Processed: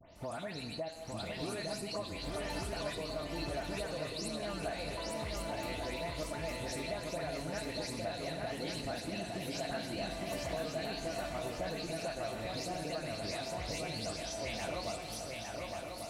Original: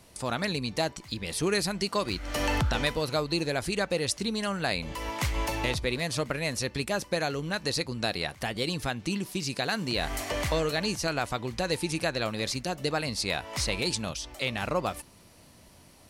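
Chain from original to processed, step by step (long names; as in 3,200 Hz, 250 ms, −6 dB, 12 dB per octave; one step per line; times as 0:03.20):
every frequency bin delayed by itself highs late, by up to 158 ms
parametric band 670 Hz +11 dB 0.3 octaves
feedback delay network reverb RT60 1.4 s, low-frequency decay 1×, high-frequency decay 0.95×, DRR 8 dB
downward compressor 4 to 1, threshold −36 dBFS, peak gain reduction 16 dB
on a send: feedback echo with a long and a short gap by turns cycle 1,143 ms, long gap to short 3 to 1, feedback 50%, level −3.5 dB
on the sum: level −4 dB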